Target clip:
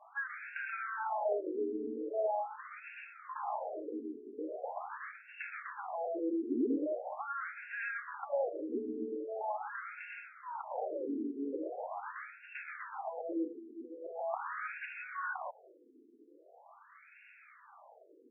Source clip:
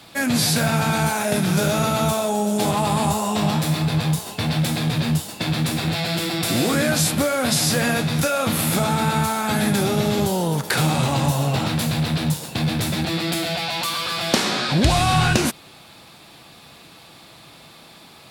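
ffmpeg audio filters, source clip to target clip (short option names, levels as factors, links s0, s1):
-filter_complex "[0:a]acrossover=split=210|690|1600[s0][s1][s2][s3];[s0]acompressor=threshold=0.0355:ratio=4[s4];[s1]acompressor=threshold=0.0631:ratio=4[s5];[s2]acompressor=threshold=0.02:ratio=4[s6];[s3]acompressor=threshold=0.0158:ratio=4[s7];[s4][s5][s6][s7]amix=inputs=4:normalize=0,afftfilt=real='re*between(b*sr/1024,310*pow(2000/310,0.5+0.5*sin(2*PI*0.42*pts/sr))/1.41,310*pow(2000/310,0.5+0.5*sin(2*PI*0.42*pts/sr))*1.41)':imag='im*between(b*sr/1024,310*pow(2000/310,0.5+0.5*sin(2*PI*0.42*pts/sr))/1.41,310*pow(2000/310,0.5+0.5*sin(2*PI*0.42*pts/sr))*1.41)':win_size=1024:overlap=0.75,volume=0.596"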